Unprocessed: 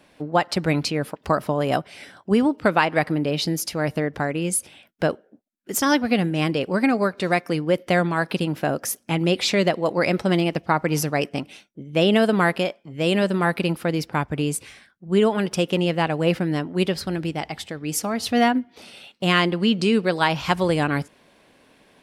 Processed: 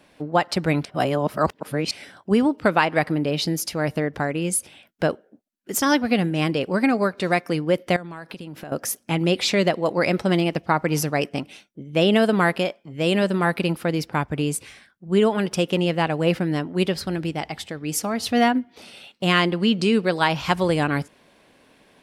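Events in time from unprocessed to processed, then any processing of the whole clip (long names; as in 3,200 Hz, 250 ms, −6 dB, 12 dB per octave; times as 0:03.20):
0:00.85–0:01.91: reverse
0:07.96–0:08.72: downward compressor 10 to 1, threshold −32 dBFS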